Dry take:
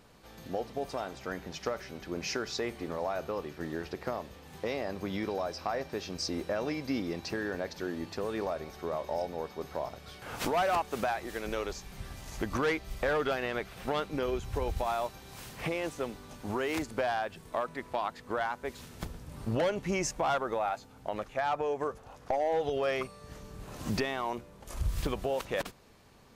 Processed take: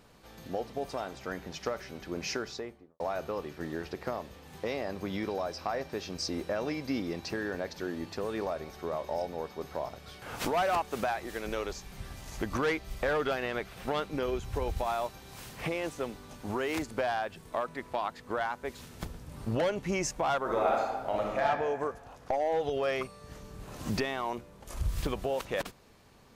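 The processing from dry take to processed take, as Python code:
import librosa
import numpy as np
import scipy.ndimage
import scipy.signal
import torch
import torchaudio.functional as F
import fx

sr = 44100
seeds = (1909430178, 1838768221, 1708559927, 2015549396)

y = fx.studio_fade_out(x, sr, start_s=2.3, length_s=0.7)
y = fx.reverb_throw(y, sr, start_s=20.4, length_s=1.04, rt60_s=1.4, drr_db=-2.5)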